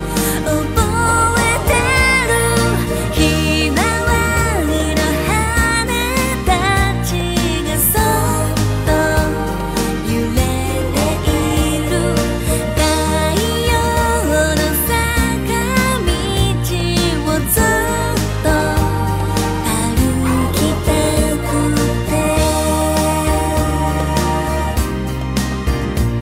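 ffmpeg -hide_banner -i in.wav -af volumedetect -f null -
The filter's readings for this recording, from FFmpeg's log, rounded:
mean_volume: -15.3 dB
max_volume: -2.0 dB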